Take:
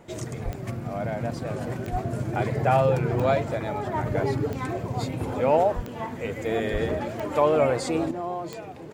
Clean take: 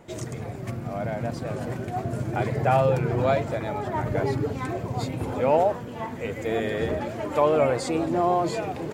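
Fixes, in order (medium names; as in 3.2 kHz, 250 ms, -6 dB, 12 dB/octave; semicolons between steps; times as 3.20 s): de-click; de-plosive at 0.44/1.91/5.75/6.72 s; gain correction +9 dB, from 8.11 s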